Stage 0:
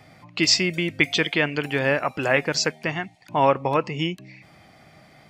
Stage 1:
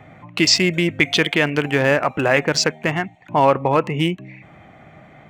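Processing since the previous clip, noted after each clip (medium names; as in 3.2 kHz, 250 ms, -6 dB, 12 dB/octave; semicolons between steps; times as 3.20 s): local Wiener filter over 9 samples; in parallel at +2 dB: peak limiter -15.5 dBFS, peak gain reduction 11 dB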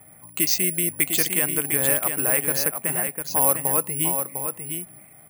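delay 702 ms -6.5 dB; careless resampling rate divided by 4×, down filtered, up zero stuff; trim -11 dB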